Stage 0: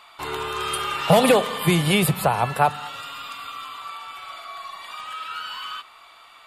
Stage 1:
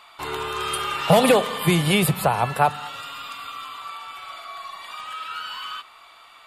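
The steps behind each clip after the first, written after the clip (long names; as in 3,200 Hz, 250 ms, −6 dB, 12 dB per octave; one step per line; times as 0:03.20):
no processing that can be heard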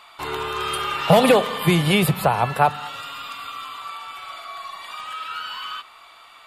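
dynamic equaliser 8,900 Hz, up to −5 dB, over −45 dBFS, Q 0.93
level +1.5 dB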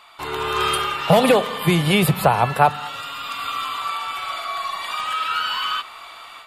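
automatic gain control gain up to 9 dB
level −1 dB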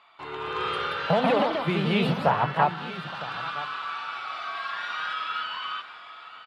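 single-tap delay 963 ms −14.5 dB
delay with pitch and tempo change per echo 259 ms, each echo +2 semitones, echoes 2
band-pass filter 100–3,300 Hz
level −8.5 dB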